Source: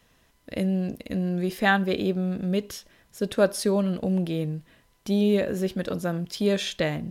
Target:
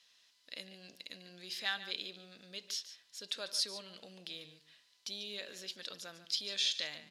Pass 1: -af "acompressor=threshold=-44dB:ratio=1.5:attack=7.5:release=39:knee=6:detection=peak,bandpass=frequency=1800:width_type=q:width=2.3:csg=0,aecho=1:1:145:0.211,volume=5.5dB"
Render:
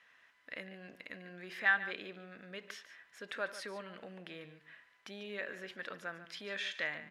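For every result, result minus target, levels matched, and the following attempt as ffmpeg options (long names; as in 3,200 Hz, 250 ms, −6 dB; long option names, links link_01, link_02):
2,000 Hz band +10.0 dB; downward compressor: peak gain reduction +3 dB
-af "acompressor=threshold=-44dB:ratio=1.5:attack=7.5:release=39:knee=6:detection=peak,bandpass=frequency=4400:width_type=q:width=2.3:csg=0,aecho=1:1:145:0.211,volume=5.5dB"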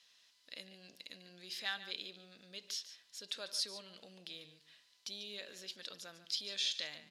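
downward compressor: peak gain reduction +3 dB
-af "acompressor=threshold=-34.5dB:ratio=1.5:attack=7.5:release=39:knee=6:detection=peak,bandpass=frequency=4400:width_type=q:width=2.3:csg=0,aecho=1:1:145:0.211,volume=5.5dB"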